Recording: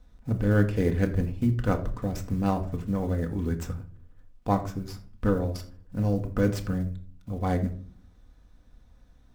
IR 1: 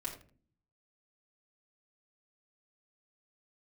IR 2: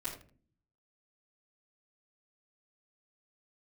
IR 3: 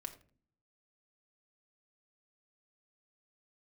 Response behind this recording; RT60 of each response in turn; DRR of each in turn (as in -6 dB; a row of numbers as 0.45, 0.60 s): 3; 0.45, 0.45, 0.45 s; -4.5, -13.0, 4.0 dB